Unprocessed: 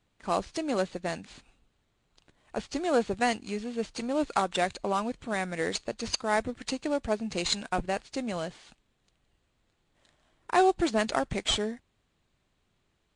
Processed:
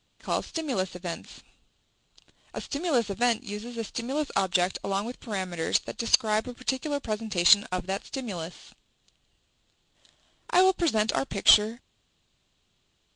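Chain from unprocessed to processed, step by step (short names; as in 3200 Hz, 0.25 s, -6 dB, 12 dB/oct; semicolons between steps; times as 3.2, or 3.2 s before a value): band shelf 4600 Hz +8.5 dB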